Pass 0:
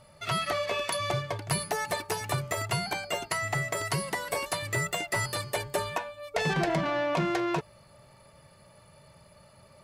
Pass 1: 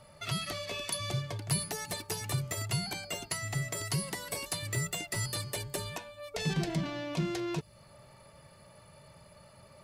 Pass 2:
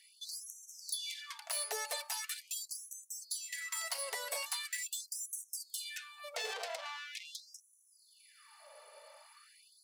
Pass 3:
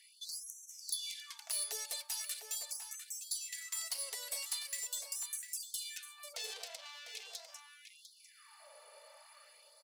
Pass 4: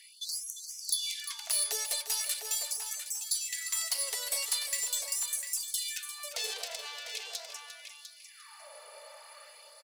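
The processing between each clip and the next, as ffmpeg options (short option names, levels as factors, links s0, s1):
-filter_complex "[0:a]acrossover=split=320|3000[s0][s1][s2];[s1]acompressor=threshold=0.00794:ratio=6[s3];[s0][s3][s2]amix=inputs=3:normalize=0"
-af "asoftclip=type=tanh:threshold=0.0282,afftfilt=real='re*gte(b*sr/1024,410*pow(5800/410,0.5+0.5*sin(2*PI*0.42*pts/sr)))':imag='im*gte(b*sr/1024,410*pow(5800/410,0.5+0.5*sin(2*PI*0.42*pts/sr)))':win_size=1024:overlap=0.75,volume=1.19"
-filter_complex "[0:a]aecho=1:1:700:0.266,acrossover=split=310|3000[s0][s1][s2];[s1]acompressor=threshold=0.00141:ratio=4[s3];[s0][s3][s2]amix=inputs=3:normalize=0,aeval=exprs='0.0596*(cos(1*acos(clip(val(0)/0.0596,-1,1)))-cos(1*PI/2))+0.00237*(cos(3*acos(clip(val(0)/0.0596,-1,1)))-cos(3*PI/2))+0.000473*(cos(6*acos(clip(val(0)/0.0596,-1,1)))-cos(6*PI/2))':c=same,volume=1.19"
-af "aecho=1:1:350|700:0.282|0.0479,volume=2.37"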